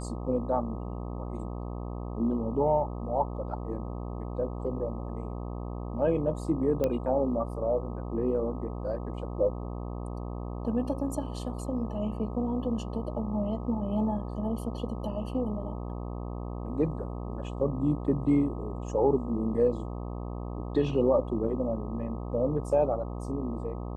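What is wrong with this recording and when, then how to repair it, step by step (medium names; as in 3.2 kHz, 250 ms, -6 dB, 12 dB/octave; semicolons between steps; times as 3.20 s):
buzz 60 Hz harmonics 21 -36 dBFS
6.84 s: pop -16 dBFS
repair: de-click; de-hum 60 Hz, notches 21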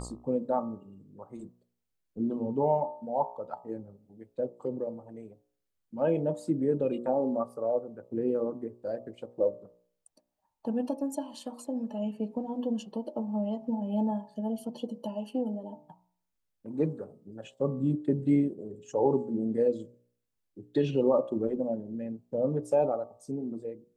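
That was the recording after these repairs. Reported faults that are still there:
nothing left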